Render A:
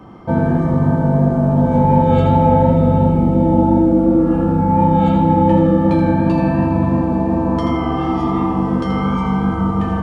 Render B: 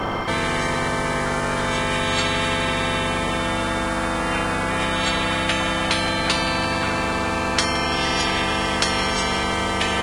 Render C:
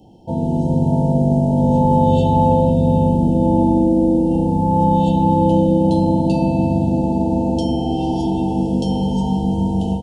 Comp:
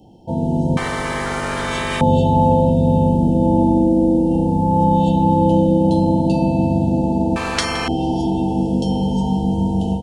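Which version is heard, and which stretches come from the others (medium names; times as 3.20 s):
C
0.77–2.01 s: from B
7.36–7.88 s: from B
not used: A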